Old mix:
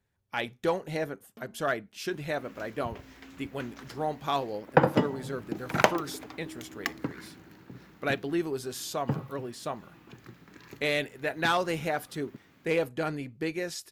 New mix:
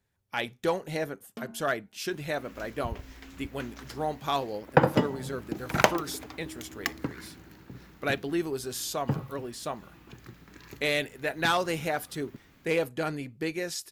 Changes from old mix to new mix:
first sound +9.5 dB; second sound: remove HPF 110 Hz 12 dB/oct; master: add high shelf 4200 Hz +5 dB

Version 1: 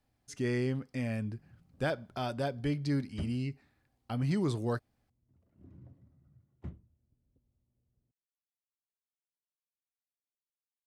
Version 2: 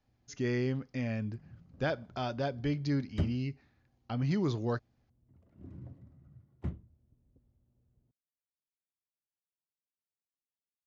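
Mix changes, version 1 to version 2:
speech: add brick-wall FIR low-pass 7100 Hz; background +6.5 dB

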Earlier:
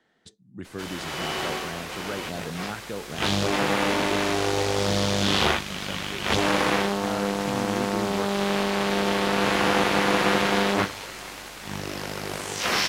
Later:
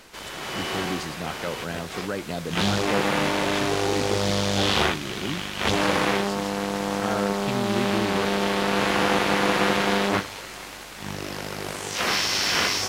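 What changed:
speech +4.0 dB; background: entry -0.65 s

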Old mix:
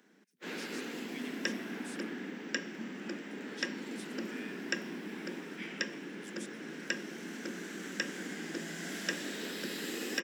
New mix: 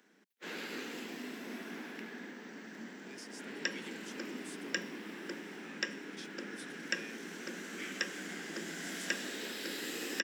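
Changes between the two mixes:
speech: entry +2.60 s; second sound: entry +2.20 s; master: add low shelf 340 Hz -6 dB

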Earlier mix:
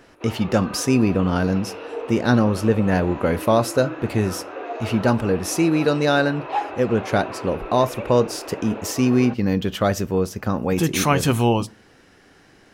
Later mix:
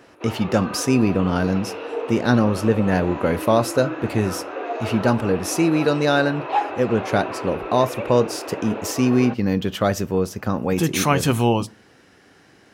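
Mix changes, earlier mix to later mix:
background +3.0 dB; master: add HPF 72 Hz

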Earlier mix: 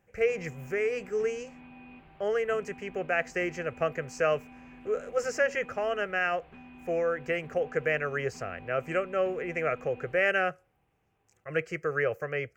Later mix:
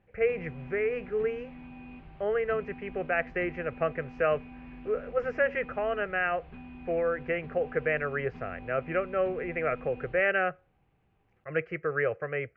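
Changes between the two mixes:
speech: add LPF 2600 Hz 24 dB/oct; background: add low shelf 180 Hz +11.5 dB

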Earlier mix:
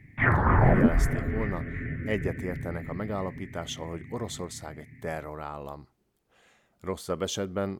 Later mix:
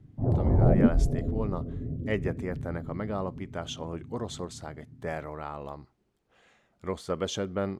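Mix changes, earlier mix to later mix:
background: add steep low-pass 680 Hz 36 dB/oct; master: add air absorption 51 m

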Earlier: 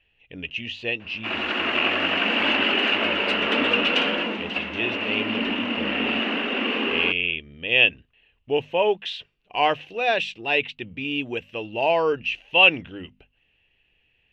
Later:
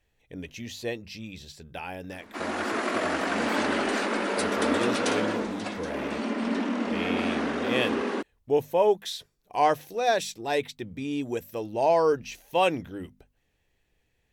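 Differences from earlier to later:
background: entry +1.10 s; master: remove synth low-pass 2800 Hz, resonance Q 11

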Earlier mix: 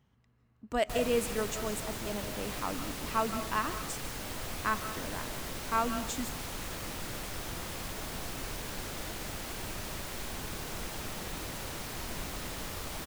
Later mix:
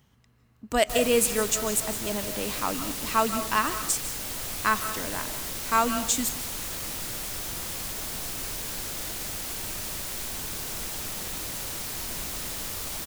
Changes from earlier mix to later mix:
speech +6.0 dB; master: add high shelf 3900 Hz +11.5 dB

